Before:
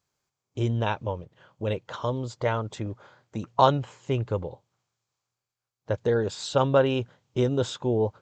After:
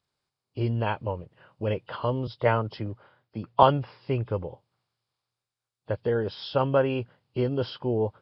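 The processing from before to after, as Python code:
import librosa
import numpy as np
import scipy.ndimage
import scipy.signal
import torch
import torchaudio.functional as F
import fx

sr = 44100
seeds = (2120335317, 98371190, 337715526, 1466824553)

y = fx.freq_compress(x, sr, knee_hz=2400.0, ratio=1.5)
y = fx.rider(y, sr, range_db=10, speed_s=2.0)
y = fx.band_widen(y, sr, depth_pct=40, at=(2.27, 3.63))
y = y * librosa.db_to_amplitude(-1.5)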